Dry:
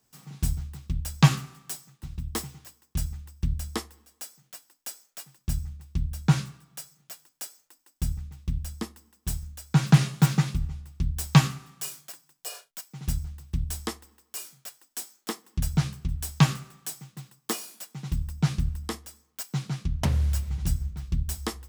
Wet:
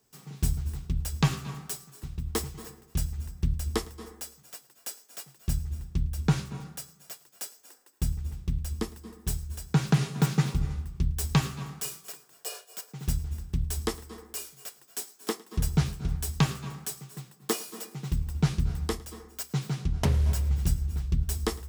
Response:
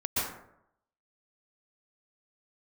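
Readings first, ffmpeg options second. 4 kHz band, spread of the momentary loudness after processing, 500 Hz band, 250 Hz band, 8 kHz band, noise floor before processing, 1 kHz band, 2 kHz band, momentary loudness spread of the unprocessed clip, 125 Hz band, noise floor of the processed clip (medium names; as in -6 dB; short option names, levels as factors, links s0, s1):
-2.0 dB, 14 LU, +4.0 dB, -2.5 dB, -0.5 dB, -73 dBFS, -3.0 dB, -3.0 dB, 20 LU, -2.5 dB, -59 dBFS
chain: -filter_complex "[0:a]equalizer=f=420:t=o:w=0.34:g=9,alimiter=limit=0.251:level=0:latency=1:release=299,asplit=2[s0][s1];[1:a]atrim=start_sample=2205,adelay=108[s2];[s1][s2]afir=irnorm=-1:irlink=0,volume=0.0891[s3];[s0][s3]amix=inputs=2:normalize=0"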